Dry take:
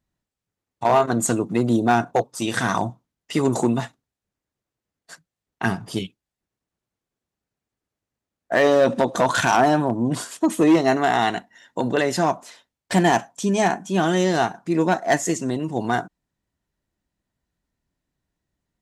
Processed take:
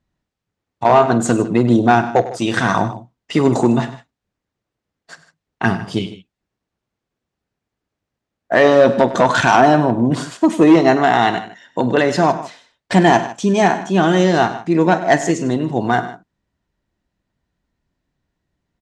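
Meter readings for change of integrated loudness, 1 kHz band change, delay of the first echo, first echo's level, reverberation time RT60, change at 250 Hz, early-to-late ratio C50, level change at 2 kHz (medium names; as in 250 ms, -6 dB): +6.0 dB, +6.0 dB, 48 ms, -17.0 dB, no reverb, +6.0 dB, no reverb, +5.5 dB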